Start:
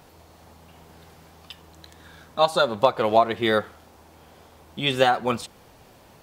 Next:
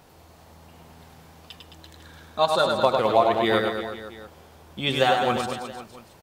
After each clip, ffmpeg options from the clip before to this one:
ffmpeg -i in.wav -af "aecho=1:1:100|215|347.2|499.3|674.2:0.631|0.398|0.251|0.158|0.1,volume=-2dB" out.wav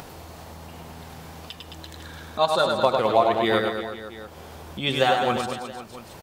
ffmpeg -i in.wav -af "acompressor=mode=upward:threshold=-31dB:ratio=2.5" out.wav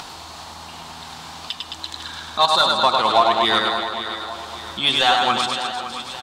ffmpeg -i in.wav -filter_complex "[0:a]equalizer=frequency=125:width_type=o:width=1:gain=-4,equalizer=frequency=500:width_type=o:width=1:gain=-11,equalizer=frequency=1000:width_type=o:width=1:gain=4,equalizer=frequency=2000:width_type=o:width=1:gain=-4,equalizer=frequency=4000:width_type=o:width=1:gain=10,equalizer=frequency=8000:width_type=o:width=1:gain=9,aecho=1:1:562|1124|1686|2248:0.211|0.0972|0.0447|0.0206,asplit=2[link_01][link_02];[link_02]highpass=frequency=720:poles=1,volume=12dB,asoftclip=type=tanh:threshold=-4.5dB[link_03];[link_01][link_03]amix=inputs=2:normalize=0,lowpass=frequency=1800:poles=1,volume=-6dB,volume=3dB" out.wav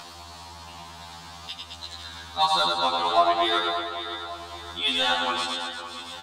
ffmpeg -i in.wav -af "afftfilt=real='re*2*eq(mod(b,4),0)':imag='im*2*eq(mod(b,4),0)':win_size=2048:overlap=0.75,volume=-4dB" out.wav

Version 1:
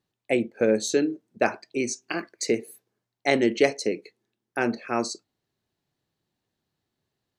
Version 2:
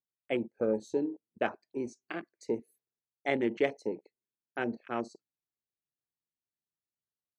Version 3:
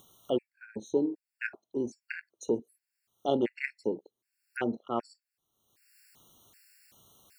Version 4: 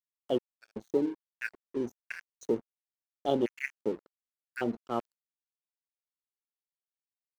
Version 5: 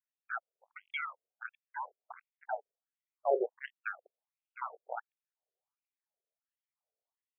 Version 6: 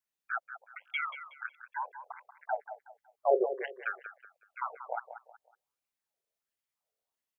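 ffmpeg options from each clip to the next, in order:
ffmpeg -i in.wav -af "afwtdn=0.0282,volume=-8dB" out.wav
ffmpeg -i in.wav -af "acompressor=mode=upward:threshold=-35dB:ratio=2.5,afftfilt=real='re*gt(sin(2*PI*1.3*pts/sr)*(1-2*mod(floor(b*sr/1024/1400),2)),0)':imag='im*gt(sin(2*PI*1.3*pts/sr)*(1-2*mod(floor(b*sr/1024/1400),2)),0)':win_size=1024:overlap=0.75,volume=3.5dB" out.wav
ffmpeg -i in.wav -af "aeval=exprs='sgn(val(0))*max(abs(val(0))-0.00447,0)':channel_layout=same" out.wav
ffmpeg -i in.wav -af "acrusher=samples=34:mix=1:aa=0.000001:lfo=1:lforange=20.4:lforate=0.83,afftfilt=real='re*between(b*sr/1024,510*pow(2700/510,0.5+0.5*sin(2*PI*1.4*pts/sr))/1.41,510*pow(2700/510,0.5+0.5*sin(2*PI*1.4*pts/sr))*1.41)':imag='im*between(b*sr/1024,510*pow(2700/510,0.5+0.5*sin(2*PI*1.4*pts/sr))/1.41,510*pow(2700/510,0.5+0.5*sin(2*PI*1.4*pts/sr))*1.41)':win_size=1024:overlap=0.75,volume=3dB" out.wav
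ffmpeg -i in.wav -af "aecho=1:1:185|370|555:0.282|0.0874|0.0271,volume=3.5dB" out.wav

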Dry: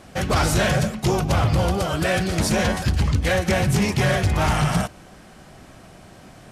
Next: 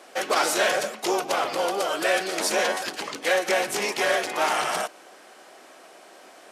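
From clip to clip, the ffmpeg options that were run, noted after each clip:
ffmpeg -i in.wav -af "highpass=frequency=360:width=0.5412,highpass=frequency=360:width=1.3066" out.wav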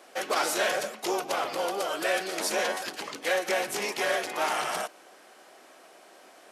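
ffmpeg -i in.wav -af "aexciter=amount=1.2:drive=2:freq=11000,volume=-4.5dB" out.wav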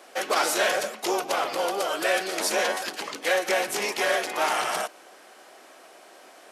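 ffmpeg -i in.wav -af "highpass=frequency=180:poles=1,volume=3.5dB" out.wav

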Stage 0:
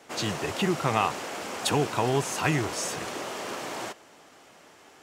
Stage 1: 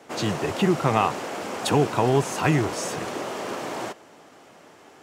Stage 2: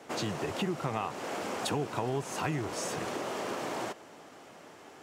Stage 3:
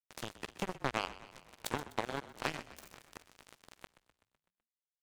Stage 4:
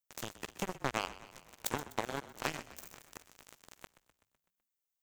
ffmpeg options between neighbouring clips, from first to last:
ffmpeg -i in.wav -af "highpass=79,tiltshelf=frequency=1300:gain=3.5,volume=2.5dB" out.wav
ffmpeg -i in.wav -af "acompressor=threshold=-31dB:ratio=3,volume=-1.5dB" out.wav
ffmpeg -i in.wav -filter_complex "[0:a]acrusher=bits=3:mix=0:aa=0.5,asplit=7[link_01][link_02][link_03][link_04][link_05][link_06][link_07];[link_02]adelay=126,afreqshift=-39,volume=-16dB[link_08];[link_03]adelay=252,afreqshift=-78,volume=-20.3dB[link_09];[link_04]adelay=378,afreqshift=-117,volume=-24.6dB[link_10];[link_05]adelay=504,afreqshift=-156,volume=-28.9dB[link_11];[link_06]adelay=630,afreqshift=-195,volume=-33.2dB[link_12];[link_07]adelay=756,afreqshift=-234,volume=-37.5dB[link_13];[link_01][link_08][link_09][link_10][link_11][link_12][link_13]amix=inputs=7:normalize=0" out.wav
ffmpeg -i in.wav -af "aexciter=amount=1.7:drive=5.9:freq=6000" out.wav

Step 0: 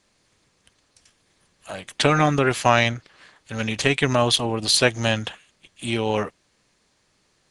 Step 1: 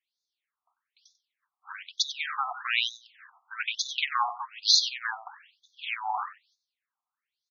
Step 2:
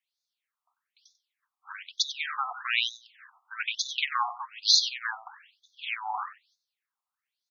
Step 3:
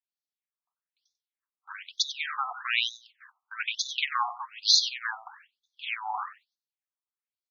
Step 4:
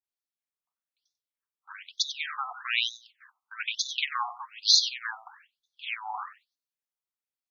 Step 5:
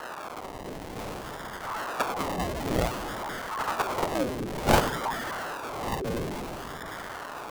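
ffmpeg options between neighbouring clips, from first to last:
ffmpeg -i in.wav -af "agate=range=-17dB:threshold=-60dB:ratio=16:detection=peak,aecho=1:1:94|188:0.2|0.0399,afftfilt=real='re*between(b*sr/1024,930*pow(4900/930,0.5+0.5*sin(2*PI*1.1*pts/sr))/1.41,930*pow(4900/930,0.5+0.5*sin(2*PI*1.1*pts/sr))*1.41)':imag='im*between(b*sr/1024,930*pow(4900/930,0.5+0.5*sin(2*PI*1.1*pts/sr))/1.41,930*pow(4900/930,0.5+0.5*sin(2*PI*1.1*pts/sr))*1.41)':win_size=1024:overlap=0.75" out.wav
ffmpeg -i in.wav -af "highpass=780" out.wav
ffmpeg -i in.wav -af "agate=range=-15dB:threshold=-54dB:ratio=16:detection=peak" out.wav
ffmpeg -i in.wav -af "adynamicequalizer=threshold=0.01:dfrequency=2300:dqfactor=0.7:tfrequency=2300:tqfactor=0.7:attack=5:release=100:ratio=0.375:range=2:mode=boostabove:tftype=highshelf,volume=-3dB" out.wav
ffmpeg -i in.wav -af "aeval=exprs='val(0)+0.5*0.0447*sgn(val(0))':channel_layout=same,acrusher=samples=36:mix=1:aa=0.000001:lfo=1:lforange=21.6:lforate=0.55,aeval=exprs='val(0)*sin(2*PI*680*n/s+680*0.6/0.56*sin(2*PI*0.56*n/s))':channel_layout=same,volume=1.5dB" out.wav

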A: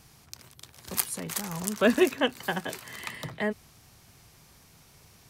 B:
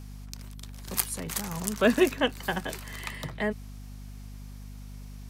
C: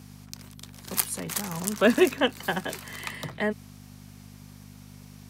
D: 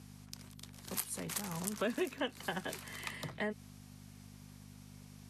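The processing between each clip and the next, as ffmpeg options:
ffmpeg -i in.wav -af "aeval=exprs='val(0)+0.00891*(sin(2*PI*50*n/s)+sin(2*PI*2*50*n/s)/2+sin(2*PI*3*50*n/s)/3+sin(2*PI*4*50*n/s)/4+sin(2*PI*5*50*n/s)/5)':channel_layout=same" out.wav
ffmpeg -i in.wav -af "highpass=120,volume=2dB" out.wav
ffmpeg -i in.wav -af "acompressor=threshold=-26dB:ratio=4,volume=-7dB" -ar 32000 -c:a libvorbis -b:a 48k out.ogg

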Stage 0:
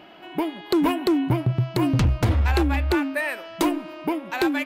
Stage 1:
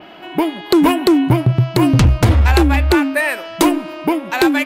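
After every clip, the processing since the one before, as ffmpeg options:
ffmpeg -i in.wav -af "adynamicequalizer=threshold=0.00398:dfrequency=9000:dqfactor=0.77:tfrequency=9000:tqfactor=0.77:attack=5:release=100:ratio=0.375:range=2:mode=boostabove:tftype=bell,volume=8.5dB" out.wav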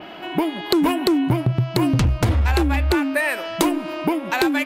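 ffmpeg -i in.wav -af "acompressor=threshold=-21dB:ratio=2.5,volume=1.5dB" out.wav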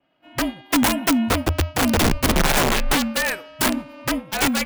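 ffmpeg -i in.wav -af "aeval=exprs='(mod(4.73*val(0)+1,2)-1)/4.73':channel_layout=same,afreqshift=-45,agate=range=-33dB:threshold=-19dB:ratio=3:detection=peak" out.wav

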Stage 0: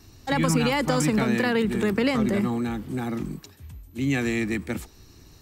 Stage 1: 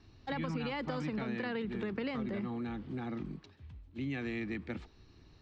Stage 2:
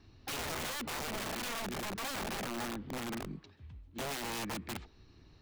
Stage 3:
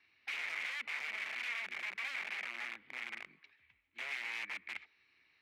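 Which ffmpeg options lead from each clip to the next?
ffmpeg -i in.wav -af "lowpass=frequency=4300:width=0.5412,lowpass=frequency=4300:width=1.3066,acompressor=threshold=-27dB:ratio=2.5,volume=-8.5dB" out.wav
ffmpeg -i in.wav -af "aeval=exprs='(mod(47.3*val(0)+1,2)-1)/47.3':channel_layout=same" out.wav
ffmpeg -i in.wav -af "bandpass=frequency=2200:width_type=q:width=5.7:csg=0,volume=9.5dB" out.wav

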